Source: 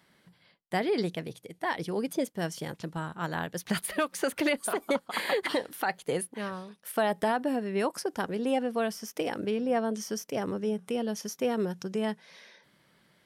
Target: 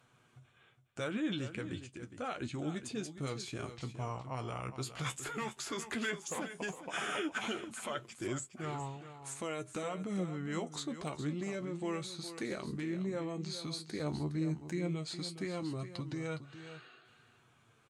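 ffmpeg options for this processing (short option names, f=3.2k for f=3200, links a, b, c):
-filter_complex "[0:a]deesser=0.6,acrossover=split=2600[a][b];[a]alimiter=level_in=4dB:limit=-24dB:level=0:latency=1:release=42,volume=-4dB[c];[c][b]amix=inputs=2:normalize=0,flanger=delay=6:depth=5.3:regen=44:speed=0.16:shape=sinusoidal,aecho=1:1:306:0.266,asetrate=32667,aresample=44100,volume=1dB"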